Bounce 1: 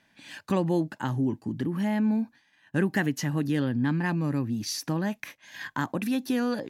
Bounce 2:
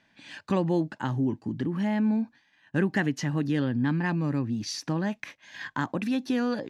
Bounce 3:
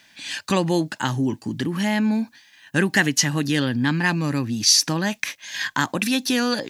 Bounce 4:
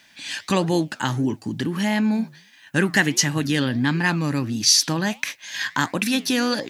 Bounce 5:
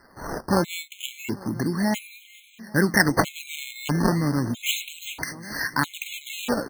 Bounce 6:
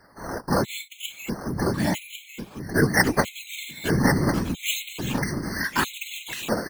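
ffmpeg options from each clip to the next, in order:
-af "lowpass=6200"
-af "crystalizer=i=8:c=0,volume=1.5"
-af "flanger=delay=3.2:depth=7.3:regen=-89:speed=1.5:shape=triangular,volume=1.68"
-af "acrusher=samples=13:mix=1:aa=0.000001:lfo=1:lforange=20.8:lforate=0.33,aecho=1:1:421|842|1263|1684|2105:0.119|0.0689|0.04|0.0232|0.0134,afftfilt=real='re*gt(sin(2*PI*0.77*pts/sr)*(1-2*mod(floor(b*sr/1024/2100),2)),0)':imag='im*gt(sin(2*PI*0.77*pts/sr)*(1-2*mod(floor(b*sr/1024/2100),2)),0)':win_size=1024:overlap=0.75"
-af "afftfilt=real='hypot(re,im)*cos(2*PI*random(0))':imag='hypot(re,im)*sin(2*PI*random(1))':win_size=512:overlap=0.75,aecho=1:1:1098:0.473,volume=1.88"

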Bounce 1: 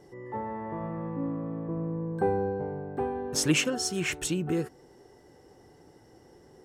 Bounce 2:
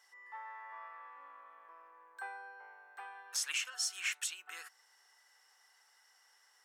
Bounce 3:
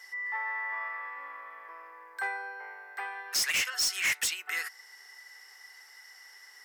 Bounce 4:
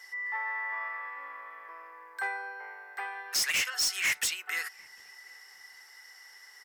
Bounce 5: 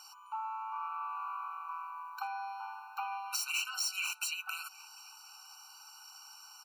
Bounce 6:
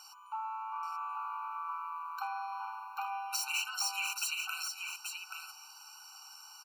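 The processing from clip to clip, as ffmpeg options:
-af "highpass=f=1200:w=0.5412,highpass=f=1200:w=1.3066,alimiter=limit=0.0631:level=0:latency=1:release=357"
-af "equalizer=f=400:t=o:w=0.33:g=7,equalizer=f=2000:t=o:w=0.33:g=12,equalizer=f=5000:t=o:w=0.33:g=8,equalizer=f=12500:t=o:w=0.33:g=9,asoftclip=type=hard:threshold=0.0224,volume=2.66"
-filter_complex "[0:a]asplit=2[s0][s1];[s1]adelay=747,lowpass=f=990:p=1,volume=0.0794,asplit=2[s2][s3];[s3]adelay=747,lowpass=f=990:p=1,volume=0.38,asplit=2[s4][s5];[s5]adelay=747,lowpass=f=990:p=1,volume=0.38[s6];[s0][s2][s4][s6]amix=inputs=4:normalize=0"
-af "acompressor=threshold=0.0141:ratio=6,afftfilt=real='re*eq(mod(floor(b*sr/1024/770),2),1)':imag='im*eq(mod(floor(b*sr/1024/770),2),1)':win_size=1024:overlap=0.75,volume=2.11"
-af "aecho=1:1:830:0.531"

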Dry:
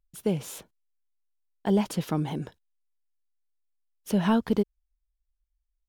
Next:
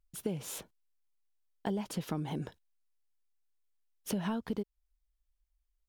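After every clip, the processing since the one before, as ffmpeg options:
-af "acompressor=threshold=0.0251:ratio=6"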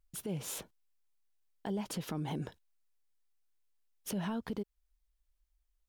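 -af "alimiter=level_in=2.11:limit=0.0631:level=0:latency=1:release=65,volume=0.473,volume=1.19"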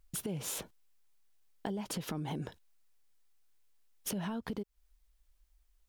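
-af "acompressor=threshold=0.00708:ratio=6,volume=2.51"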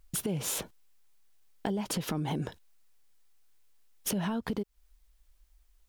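-af "aeval=exprs='clip(val(0),-1,0.0316)':c=same,volume=1.88"

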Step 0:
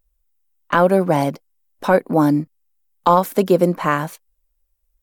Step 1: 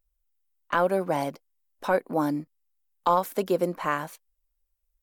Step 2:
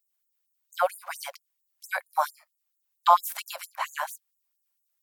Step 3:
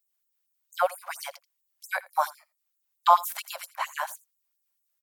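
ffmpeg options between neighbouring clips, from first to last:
-af "equalizer=f=150:t=o:w=2.1:g=-7,volume=0.422"
-af "afftfilt=real='re*gte(b*sr/1024,530*pow(6600/530,0.5+0.5*sin(2*PI*4.4*pts/sr)))':imag='im*gte(b*sr/1024,530*pow(6600/530,0.5+0.5*sin(2*PI*4.4*pts/sr)))':win_size=1024:overlap=0.75,volume=2.11"
-af "aecho=1:1:83:0.0841"

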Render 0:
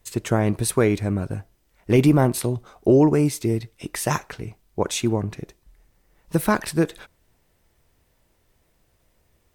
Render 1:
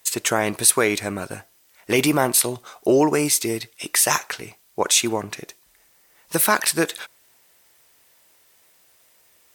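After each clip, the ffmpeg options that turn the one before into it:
-filter_complex "[0:a]highpass=f=1200:p=1,highshelf=f=4700:g=5.5,asplit=2[s0][s1];[s1]alimiter=limit=0.133:level=0:latency=1:release=74,volume=1[s2];[s0][s2]amix=inputs=2:normalize=0,volume=1.5"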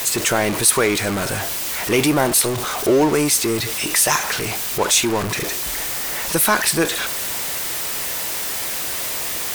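-af "aeval=exprs='val(0)+0.5*0.126*sgn(val(0))':c=same,volume=0.891"

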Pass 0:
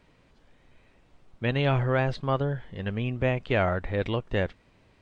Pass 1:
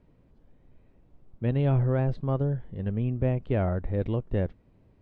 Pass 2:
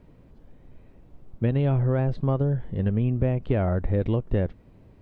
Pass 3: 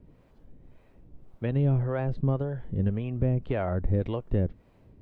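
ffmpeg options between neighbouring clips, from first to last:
-af "tiltshelf=f=850:g=10,volume=0.447"
-af "acompressor=threshold=0.0447:ratio=6,volume=2.51"
-filter_complex "[0:a]acrossover=split=470[s0][s1];[s0]aeval=exprs='val(0)*(1-0.7/2+0.7/2*cos(2*PI*1.8*n/s))':c=same[s2];[s1]aeval=exprs='val(0)*(1-0.7/2-0.7/2*cos(2*PI*1.8*n/s))':c=same[s3];[s2][s3]amix=inputs=2:normalize=0"

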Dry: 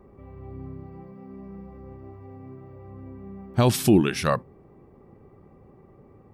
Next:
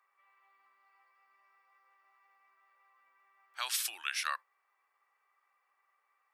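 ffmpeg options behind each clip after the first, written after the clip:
-af "highpass=f=1300:w=0.5412,highpass=f=1300:w=1.3066,volume=0.631"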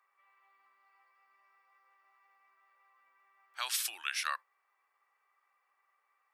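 -af anull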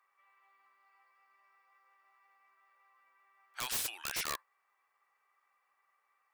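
-af "aeval=exprs='(mod(25.1*val(0)+1,2)-1)/25.1':c=same"

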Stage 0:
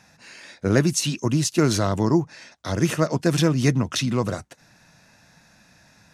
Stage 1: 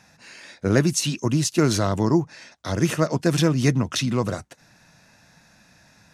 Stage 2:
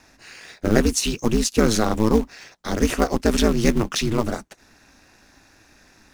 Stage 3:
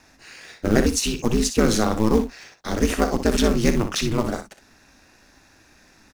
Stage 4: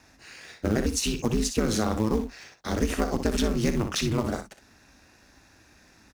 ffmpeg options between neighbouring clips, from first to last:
-af anull
-filter_complex "[0:a]aeval=exprs='val(0)*sin(2*PI*110*n/s)':c=same,asplit=2[s0][s1];[s1]acrusher=bits=2:mode=log:mix=0:aa=0.000001,volume=0.447[s2];[s0][s2]amix=inputs=2:normalize=0,volume=1.12"
-af "aecho=1:1:38|61:0.158|0.335,volume=0.891"
-af "highpass=43,lowshelf=f=110:g=6,acompressor=threshold=0.141:ratio=6,volume=0.708"

